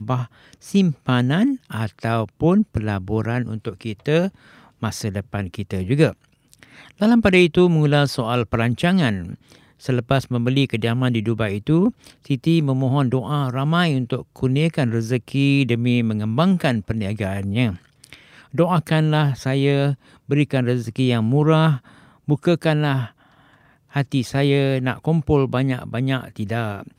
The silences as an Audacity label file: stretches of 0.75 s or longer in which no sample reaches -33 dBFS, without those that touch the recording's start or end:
23.090000	23.940000	silence